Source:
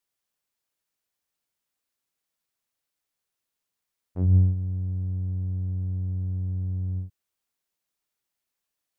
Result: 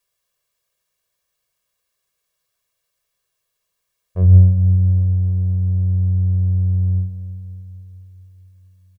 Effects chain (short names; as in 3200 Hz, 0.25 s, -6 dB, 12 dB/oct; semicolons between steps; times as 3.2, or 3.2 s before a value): comb 1.8 ms, depth 90%; on a send: reverb RT60 3.8 s, pre-delay 0.1 s, DRR 9 dB; on the sum: gain +6 dB